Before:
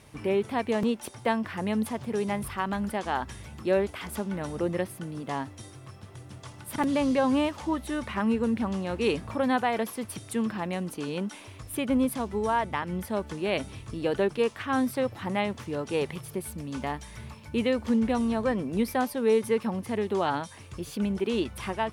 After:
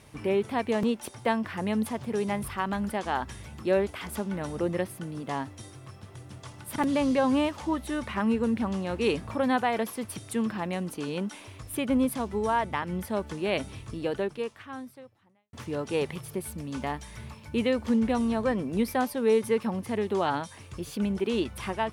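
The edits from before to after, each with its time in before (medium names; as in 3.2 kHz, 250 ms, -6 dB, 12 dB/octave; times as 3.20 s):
13.86–15.53 s: fade out quadratic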